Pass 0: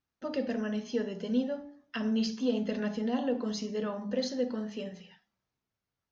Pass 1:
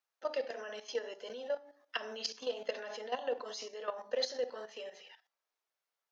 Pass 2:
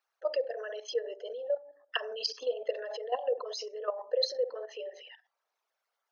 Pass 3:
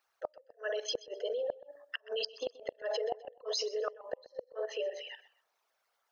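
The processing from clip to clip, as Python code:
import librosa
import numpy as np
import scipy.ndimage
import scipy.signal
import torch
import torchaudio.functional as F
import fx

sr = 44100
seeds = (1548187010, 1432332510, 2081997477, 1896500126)

y1 = scipy.signal.sosfilt(scipy.signal.butter(4, 490.0, 'highpass', fs=sr, output='sos'), x)
y1 = fx.level_steps(y1, sr, step_db=12)
y1 = y1 * librosa.db_to_amplitude(4.5)
y2 = fx.envelope_sharpen(y1, sr, power=2.0)
y2 = scipy.signal.sosfilt(scipy.signal.butter(4, 280.0, 'highpass', fs=sr, output='sos'), y2)
y2 = y2 * librosa.db_to_amplitude(5.0)
y3 = fx.gate_flip(y2, sr, shuts_db=-26.0, range_db=-37)
y3 = fx.echo_feedback(y3, sr, ms=127, feedback_pct=29, wet_db=-18.5)
y3 = y3 * librosa.db_to_amplitude(5.0)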